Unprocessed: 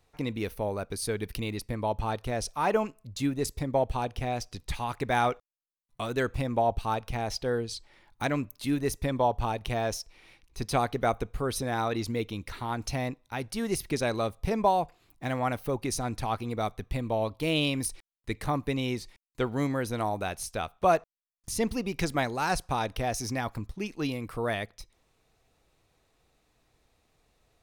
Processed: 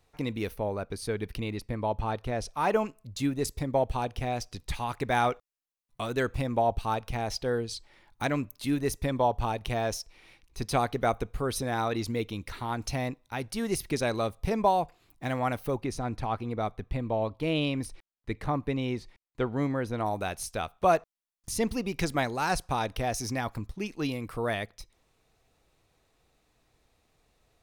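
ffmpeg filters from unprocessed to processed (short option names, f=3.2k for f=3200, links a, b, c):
-filter_complex "[0:a]asettb=1/sr,asplit=3[a][b][c];[a]atrim=end=0.564[d];[b]atrim=start=0.56:end=2.57,asetpts=PTS-STARTPTS,afade=t=in:d=0.004:c=qsin,afade=t=out:st=2.006:d=0.004:c=qsin,highshelf=f=5.3k:g=-10[e];[c]atrim=start=2.566[f];[d][e]acrossfade=d=0.004:c1=hsin:c2=qsin[g];[g][f]acrossfade=d=0.004:c1=qsin:c2=hsin,asettb=1/sr,asplit=3[h][i][j];[h]atrim=end=15.814[k];[i]atrim=start=15.81:end=20.06,asetpts=PTS-STARTPTS,afade=t=in:d=0.004:c=qsin,afade=t=out:st=4.246:d=0.004:c=qsin,lowpass=f=2.2k:p=1[l];[j]atrim=start=20.056[m];[k][l]acrossfade=d=0.004:c1=hsin:c2=qsin[n];[n][m]acrossfade=d=0.004:c1=qsin:c2=hsin"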